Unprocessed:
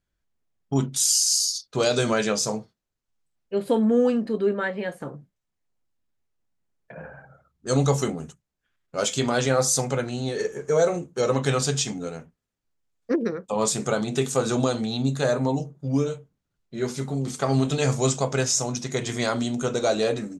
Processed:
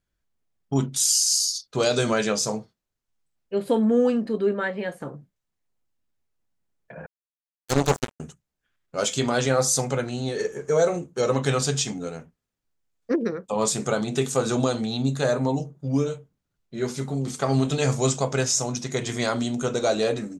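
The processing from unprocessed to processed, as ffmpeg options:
ffmpeg -i in.wav -filter_complex "[0:a]asettb=1/sr,asplit=3[link_01][link_02][link_03];[link_01]atrim=end=7.064[link_04];[link_02]atrim=start=7.06:end=8.2,asetpts=PTS-STARTPTS,afade=type=in:duration=0.004:curve=qsin,afade=type=out:start_time=1.136:duration=0.004:curve=qsin,acrusher=bits=2:mix=0:aa=0.5[link_05];[link_03]atrim=start=8.196[link_06];[link_04][link_05]acrossfade=duration=0.004:curve1=hsin:curve2=qsin[link_07];[link_07][link_06]acrossfade=duration=0.004:curve1=qsin:curve2=hsin" out.wav

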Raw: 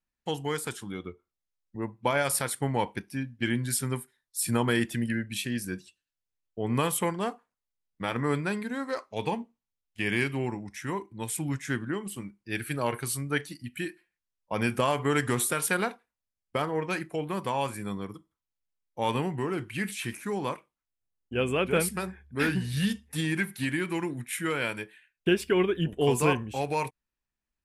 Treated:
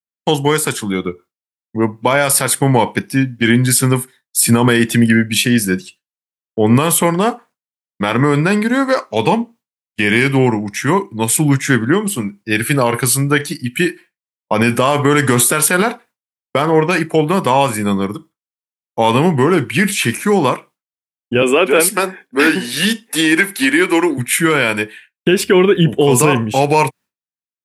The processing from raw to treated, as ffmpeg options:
ffmpeg -i in.wav -filter_complex "[0:a]asettb=1/sr,asplit=3[link_01][link_02][link_03];[link_01]atrim=end=21.424[link_04];[link_02]atrim=start=21.42:end=24.18,asetpts=PTS-STARTPTS,afade=type=in:duration=0.004:curve=qsin,afade=type=out:start_time=2.756:duration=0.004:curve=qsin,highpass=frequency=260:width=0.5412,highpass=frequency=260:width=1.3066[link_05];[link_03]atrim=start=24.176[link_06];[link_04][link_05]acrossfade=duration=0.004:curve1=hsin:curve2=qsin[link_07];[link_07][link_06]acrossfade=duration=0.004:curve1=qsin:curve2=hsin,highpass=frequency=110:width=0.5412,highpass=frequency=110:width=1.3066,agate=range=-33dB:threshold=-53dB:ratio=3:detection=peak,alimiter=level_in=19.5dB:limit=-1dB:release=50:level=0:latency=1,volume=-1dB" out.wav

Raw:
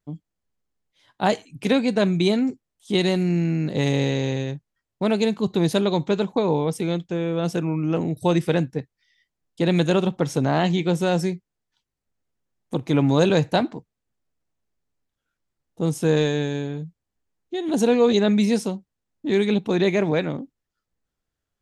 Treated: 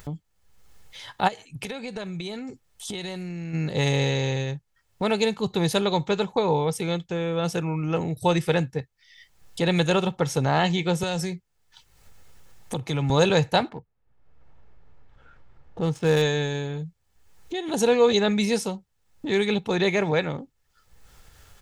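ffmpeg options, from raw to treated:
ffmpeg -i in.wav -filter_complex "[0:a]asplit=3[link_01][link_02][link_03];[link_01]afade=type=out:start_time=1.27:duration=0.02[link_04];[link_02]acompressor=threshold=-32dB:ratio=6:attack=3.2:release=140:knee=1:detection=peak,afade=type=in:start_time=1.27:duration=0.02,afade=type=out:start_time=3.53:duration=0.02[link_05];[link_03]afade=type=in:start_time=3.53:duration=0.02[link_06];[link_04][link_05][link_06]amix=inputs=3:normalize=0,asettb=1/sr,asplit=3[link_07][link_08][link_09];[link_07]atrim=end=11.034[link_10];[link_08]atrim=start=11.03:end=13.1,asetpts=PTS-STARTPTS,afade=type=in:duration=0.004:curve=qsin,afade=type=out:start_time=2.066:duration=0.004:curve=qsin,acrossover=split=150|3000[link_11][link_12][link_13];[link_12]acompressor=threshold=-23dB:ratio=6:attack=3.2:release=140:knee=2.83:detection=peak[link_14];[link_11][link_14][link_13]amix=inputs=3:normalize=0[link_15];[link_09]atrim=start=13.096[link_16];[link_10][link_15]acrossfade=duration=0.004:curve1=hsin:curve2=qsin[link_17];[link_17][link_16]acrossfade=duration=0.004:curve1=qsin:curve2=hsin,asettb=1/sr,asplit=3[link_18][link_19][link_20];[link_18]atrim=end=13.694[link_21];[link_19]atrim=start=13.69:end=16.22,asetpts=PTS-STARTPTS,afade=type=in:duration=0.004:curve=qsin,afade=type=out:start_time=2.526:duration=0.004:curve=qsin,adynamicsmooth=sensitivity=7:basefreq=1800[link_22];[link_20]atrim=start=16.216[link_23];[link_21][link_22]acrossfade=duration=0.004:curve1=hsin:curve2=qsin[link_24];[link_24][link_23]acrossfade=duration=0.004:curve1=qsin:curve2=hsin,equalizer=frequency=320:width_type=o:width=1.1:gain=-9,aecho=1:1:2.3:0.31,acompressor=mode=upward:threshold=-29dB:ratio=2.5,volume=2dB" out.wav

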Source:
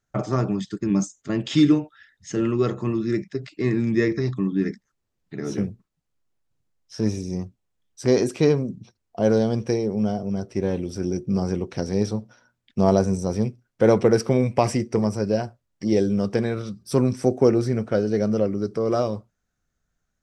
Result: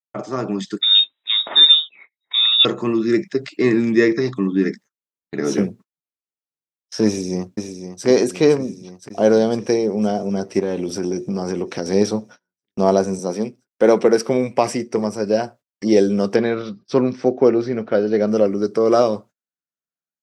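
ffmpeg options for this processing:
ffmpeg -i in.wav -filter_complex "[0:a]asettb=1/sr,asplit=3[link_01][link_02][link_03];[link_01]atrim=end=0.814[link_04];[link_02]atrim=start=0.81:end=2.65,asetpts=PTS-STARTPTS,afade=type=in:duration=0.004:curve=qsin,afade=type=out:start_time=1.836:duration=0.004:curve=qsin,lowpass=frequency=3300:width_type=q:width=0.5098,lowpass=frequency=3300:width_type=q:width=0.6013,lowpass=frequency=3300:width_type=q:width=0.9,lowpass=frequency=3300:width_type=q:width=2.563,afreqshift=-3900[link_05];[link_03]atrim=start=2.646[link_06];[link_04][link_05]acrossfade=duration=0.004:curve1=hsin:curve2=qsin[link_07];[link_07][link_06]acrossfade=duration=0.004:curve1=qsin:curve2=hsin,asplit=2[link_08][link_09];[link_09]afade=type=in:start_time=7.06:duration=0.01,afade=type=out:start_time=8.06:duration=0.01,aecho=0:1:510|1020|1530|2040|2550|3060|3570|4080|4590|5100|5610:0.501187|0.350831|0.245582|0.171907|0.120335|0.0842345|0.0589642|0.0412749|0.0288924|0.0202247|0.0141573[link_10];[link_08][link_10]amix=inputs=2:normalize=0,asettb=1/sr,asplit=3[link_11][link_12][link_13];[link_11]atrim=end=10.594[link_14];[link_12]atrim=start=10.59:end=11.86,asetpts=PTS-STARTPTS,afade=type=in:duration=0.004:curve=qsin,afade=type=out:start_time=1.266:duration=0.004:curve=qsin,acompressor=threshold=-25dB:ratio=4:attack=3.2:release=140:knee=1:detection=peak[link_15];[link_13]atrim=start=11.856[link_16];[link_14][link_15]acrossfade=duration=0.004:curve1=hsin:curve2=qsin[link_17];[link_17][link_16]acrossfade=duration=0.004:curve1=qsin:curve2=hsin,asettb=1/sr,asplit=3[link_18][link_19][link_20];[link_18]atrim=end=13.194[link_21];[link_19]atrim=start=13.19:end=14.29,asetpts=PTS-STARTPTS,afade=type=in:duration=0.004:curve=qsin,afade=type=out:start_time=1.096:duration=0.004:curve=qsin,highpass=frequency=140:width=0.5412,highpass=frequency=140:width=1.3066[link_22];[link_20]atrim=start=14.286[link_23];[link_21][link_22]acrossfade=duration=0.004:curve1=hsin:curve2=qsin[link_24];[link_24][link_23]acrossfade=duration=0.004:curve1=qsin:curve2=hsin,asettb=1/sr,asplit=3[link_25][link_26][link_27];[link_25]atrim=end=16.364[link_28];[link_26]atrim=start=16.36:end=18.28,asetpts=PTS-STARTPTS,afade=type=in:duration=0.004:curve=qsin,afade=type=out:start_time=1.916:duration=0.004:curve=qsin,lowpass=frequency=4600:width=0.5412,lowpass=frequency=4600:width=1.3066[link_29];[link_27]atrim=start=18.276[link_30];[link_28][link_29]acrossfade=duration=0.004:curve1=hsin:curve2=qsin[link_31];[link_31][link_30]acrossfade=duration=0.004:curve1=qsin:curve2=hsin,highpass=240,agate=range=-29dB:threshold=-48dB:ratio=16:detection=peak,dynaudnorm=framelen=330:gausssize=3:maxgain=11.5dB,volume=-1dB" out.wav

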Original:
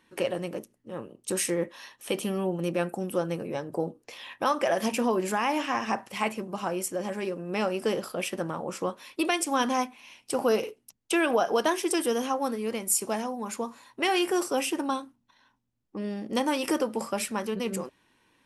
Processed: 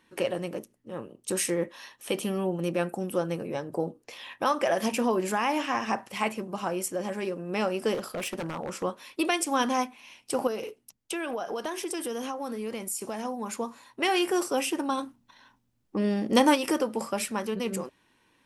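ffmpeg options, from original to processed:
ffmpeg -i in.wav -filter_complex "[0:a]asettb=1/sr,asplit=3[link_01][link_02][link_03];[link_01]atrim=end=7.944[link_04];[link_02]atrim=start=7.94:end=8.83,asetpts=PTS-STARTPTS,afade=type=in:duration=0.004:curve=qsin,afade=type=out:start_time=0.886:duration=0.004:curve=qsin,aeval=exprs='0.0473*(abs(mod(val(0)/0.0473+3,4)-2)-1)':channel_layout=same[link_05];[link_03]atrim=start=8.826[link_06];[link_04][link_05]acrossfade=duration=0.004:curve1=hsin:curve2=qsin[link_07];[link_07][link_06]acrossfade=duration=0.004:curve1=qsin:curve2=hsin,asettb=1/sr,asplit=3[link_08][link_09][link_10];[link_08]atrim=end=10.474[link_11];[link_09]atrim=start=10.47:end=13.25,asetpts=PTS-STARTPTS,afade=type=in:duration=0.004:curve=qsin,afade=type=out:start_time=2.776:duration=0.004:curve=qsin,acompressor=threshold=-30dB:ratio=4:attack=3.2:release=140:knee=1:detection=peak[link_12];[link_10]atrim=start=13.246[link_13];[link_11][link_12]acrossfade=duration=0.004:curve1=hsin:curve2=qsin[link_14];[link_14][link_13]acrossfade=duration=0.004:curve1=qsin:curve2=hsin,asplit=3[link_15][link_16][link_17];[link_15]afade=type=out:start_time=14.97:duration=0.02[link_18];[link_16]acontrast=72,afade=type=in:start_time=14.97:duration=0.02,afade=type=out:start_time=16.54:duration=0.02[link_19];[link_17]afade=type=in:start_time=16.54:duration=0.02[link_20];[link_18][link_19][link_20]amix=inputs=3:normalize=0" out.wav

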